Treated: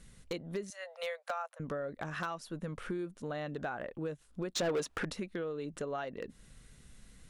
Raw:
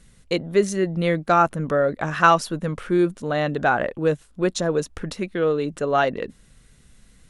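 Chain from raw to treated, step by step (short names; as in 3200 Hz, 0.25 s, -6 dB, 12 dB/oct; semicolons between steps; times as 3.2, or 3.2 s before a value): 0.7–1.6 steep high-pass 510 Hz 96 dB/oct; compressor 8:1, threshold -32 dBFS, peak gain reduction 21.5 dB; 4.55–5.05 overdrive pedal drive 22 dB, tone 4200 Hz, clips at -18.5 dBFS; wavefolder -23.5 dBFS; gain -3.5 dB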